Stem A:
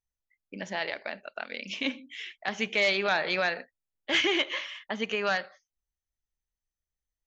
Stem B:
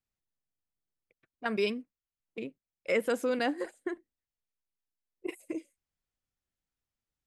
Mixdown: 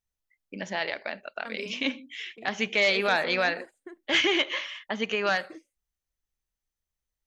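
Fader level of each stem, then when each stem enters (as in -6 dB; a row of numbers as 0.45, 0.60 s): +2.0, -9.5 dB; 0.00, 0.00 s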